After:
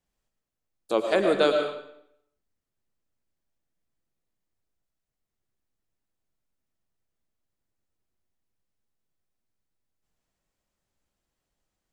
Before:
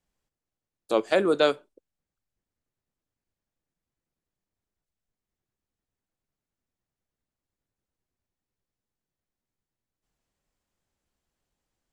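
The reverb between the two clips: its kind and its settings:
comb and all-pass reverb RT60 0.73 s, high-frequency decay 0.9×, pre-delay 70 ms, DRR 4 dB
level −1 dB

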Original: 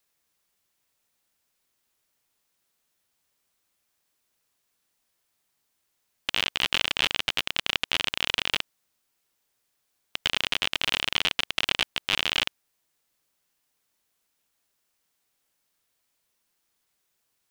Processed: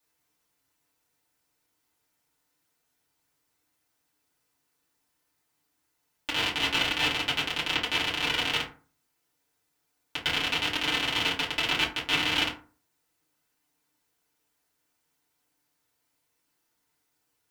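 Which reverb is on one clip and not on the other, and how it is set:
feedback delay network reverb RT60 0.39 s, low-frequency decay 1.2×, high-frequency decay 0.5×, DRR −8 dB
level −7 dB

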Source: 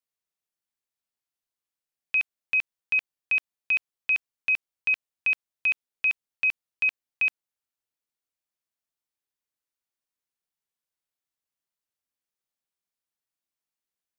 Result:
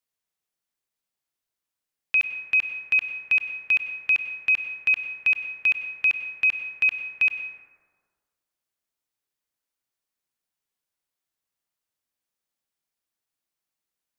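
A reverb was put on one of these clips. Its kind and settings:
dense smooth reverb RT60 1.6 s, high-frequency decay 0.35×, pre-delay 85 ms, DRR 7.5 dB
level +3 dB

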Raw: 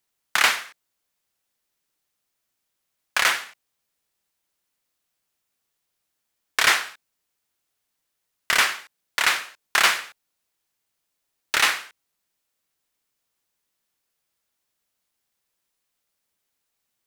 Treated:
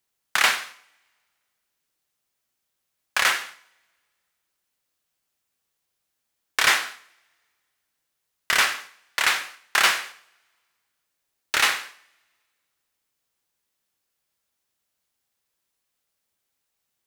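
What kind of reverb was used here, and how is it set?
coupled-rooms reverb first 0.54 s, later 1.9 s, from −27 dB, DRR 9.5 dB
level −1 dB

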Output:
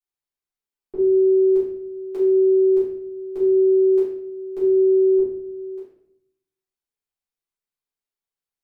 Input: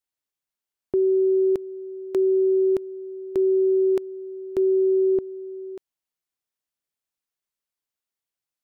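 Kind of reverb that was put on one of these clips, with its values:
rectangular room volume 140 cubic metres, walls mixed, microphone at 3.6 metres
level −15 dB

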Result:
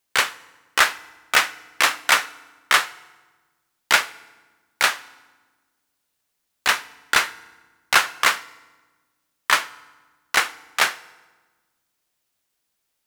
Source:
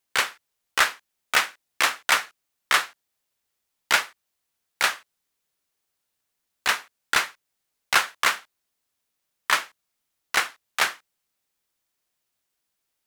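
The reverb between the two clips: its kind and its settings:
feedback delay network reverb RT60 1.3 s, low-frequency decay 1.5×, high-frequency decay 0.75×, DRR 17.5 dB
level +3.5 dB

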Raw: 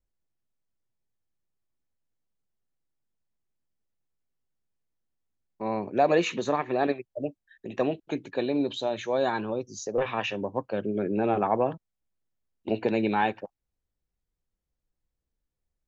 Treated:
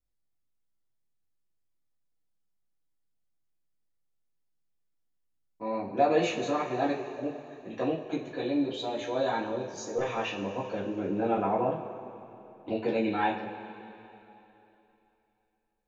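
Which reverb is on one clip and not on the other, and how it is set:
coupled-rooms reverb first 0.26 s, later 3.1 s, from −18 dB, DRR −6 dB
level −9.5 dB

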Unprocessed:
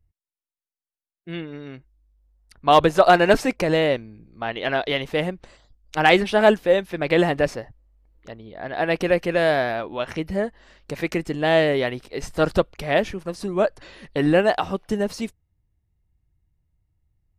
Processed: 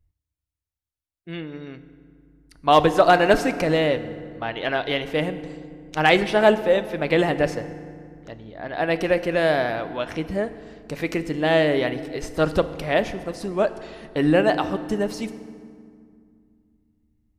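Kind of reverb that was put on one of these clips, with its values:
feedback delay network reverb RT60 2.2 s, low-frequency decay 1.5×, high-frequency decay 0.6×, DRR 11 dB
level −1 dB

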